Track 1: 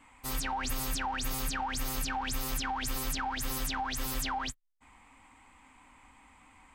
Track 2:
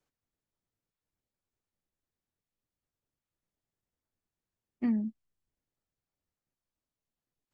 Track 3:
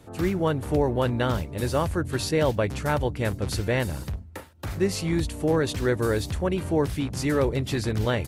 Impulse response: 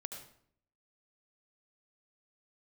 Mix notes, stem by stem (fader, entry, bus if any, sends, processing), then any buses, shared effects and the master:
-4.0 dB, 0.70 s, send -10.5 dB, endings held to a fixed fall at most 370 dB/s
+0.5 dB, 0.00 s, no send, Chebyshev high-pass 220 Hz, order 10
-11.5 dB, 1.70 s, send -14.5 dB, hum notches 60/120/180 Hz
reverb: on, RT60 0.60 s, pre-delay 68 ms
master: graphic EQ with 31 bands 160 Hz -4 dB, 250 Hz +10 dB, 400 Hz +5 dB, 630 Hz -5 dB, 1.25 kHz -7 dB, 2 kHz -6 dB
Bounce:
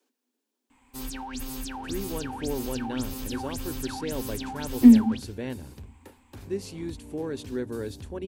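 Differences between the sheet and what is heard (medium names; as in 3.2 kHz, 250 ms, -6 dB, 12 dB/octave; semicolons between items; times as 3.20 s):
stem 2 +0.5 dB -> +10.0 dB; reverb return -6.0 dB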